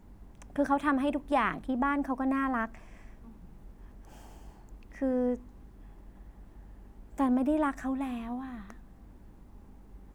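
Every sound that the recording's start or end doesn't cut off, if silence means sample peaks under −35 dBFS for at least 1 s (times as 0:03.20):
0:05.02–0:05.36
0:07.18–0:08.70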